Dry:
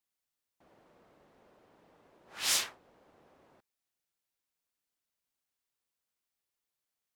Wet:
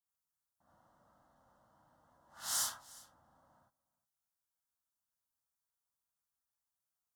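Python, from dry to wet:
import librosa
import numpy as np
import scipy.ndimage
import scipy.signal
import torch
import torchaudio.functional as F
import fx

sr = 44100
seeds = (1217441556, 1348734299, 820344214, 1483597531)

y = fx.peak_eq(x, sr, hz=4200.0, db=-3.5, octaves=0.77)
y = fx.fixed_phaser(y, sr, hz=1000.0, stages=4)
y = y + 10.0 ** (-21.5 / 20.0) * np.pad(y, (int(362 * sr / 1000.0), 0))[:len(y)]
y = fx.rev_gated(y, sr, seeds[0], gate_ms=110, shape='rising', drr_db=-4.5)
y = y * 10.0 ** (-7.5 / 20.0)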